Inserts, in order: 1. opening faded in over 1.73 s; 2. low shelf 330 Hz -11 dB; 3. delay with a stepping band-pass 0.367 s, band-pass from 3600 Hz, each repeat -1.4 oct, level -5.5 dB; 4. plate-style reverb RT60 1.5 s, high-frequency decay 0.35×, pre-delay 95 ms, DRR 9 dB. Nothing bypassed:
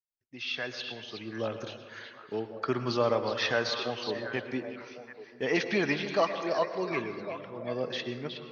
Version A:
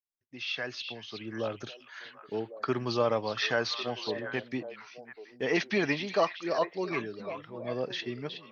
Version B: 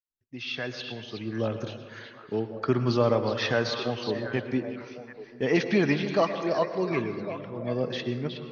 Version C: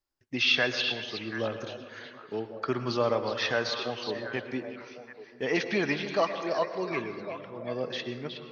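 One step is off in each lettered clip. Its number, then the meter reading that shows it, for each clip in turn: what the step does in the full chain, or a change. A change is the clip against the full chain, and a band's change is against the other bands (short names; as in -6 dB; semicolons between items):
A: 4, echo-to-direct -6.0 dB to -9.5 dB; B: 2, 125 Hz band +8.0 dB; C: 1, 4 kHz band +4.0 dB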